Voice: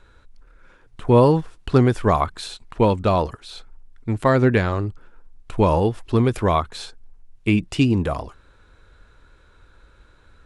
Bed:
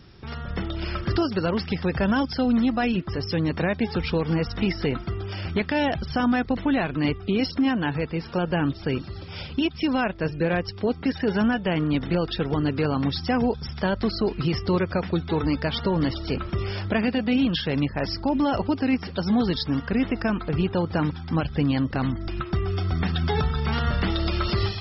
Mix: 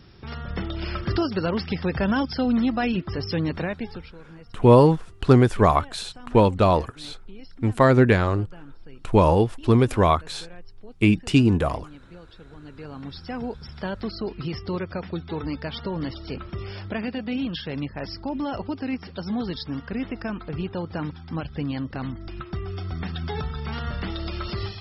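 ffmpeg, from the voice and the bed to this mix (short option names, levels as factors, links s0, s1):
-filter_complex "[0:a]adelay=3550,volume=1.06[s0];[1:a]volume=5.96,afade=t=out:st=3.4:d=0.73:silence=0.0841395,afade=t=in:st=12.58:d=1.22:silence=0.158489[s1];[s0][s1]amix=inputs=2:normalize=0"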